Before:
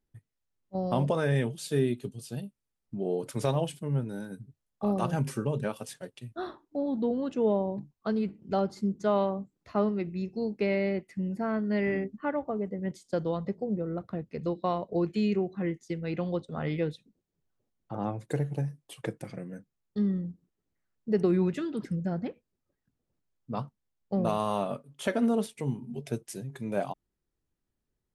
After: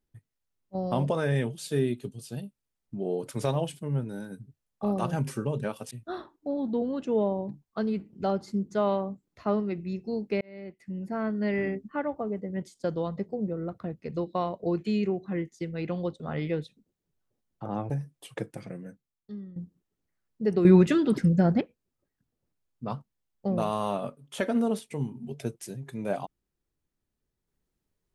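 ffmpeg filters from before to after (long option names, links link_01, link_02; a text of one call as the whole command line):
ffmpeg -i in.wav -filter_complex "[0:a]asplit=7[link_01][link_02][link_03][link_04][link_05][link_06][link_07];[link_01]atrim=end=5.912[link_08];[link_02]atrim=start=6.198:end=10.7,asetpts=PTS-STARTPTS,afade=type=out:start_time=4.498:duration=0.004:curve=hsin[link_09];[link_03]atrim=start=10.7:end=18.192,asetpts=PTS-STARTPTS,afade=type=in:duration=0.83[link_10];[link_04]atrim=start=18.568:end=20.23,asetpts=PTS-STARTPTS,afade=type=out:start_time=0.902:duration=0.76:curve=qua:silence=0.188365[link_11];[link_05]atrim=start=20.23:end=21.322,asetpts=PTS-STARTPTS,afade=type=in:duration=0.004:curve=hsin:silence=0.188365[link_12];[link_06]atrim=start=21.318:end=22.282,asetpts=PTS-STARTPTS,volume=9.5dB[link_13];[link_07]atrim=start=22.278[link_14];[link_09][link_10]concat=n=2:v=0:a=1[link_15];[link_08][link_15]acrossfade=duration=0.004:curve1=hsin:curve2=hsin[link_16];[link_11][link_12]concat=n=2:v=0:a=1[link_17];[link_16][link_17]acrossfade=duration=0.004:curve1=hsin:curve2=hsin[link_18];[link_18][link_13]acrossfade=duration=0.004:curve1=hsin:curve2=hsin[link_19];[link_19][link_14]acrossfade=duration=0.004:curve1=hsin:curve2=hsin" out.wav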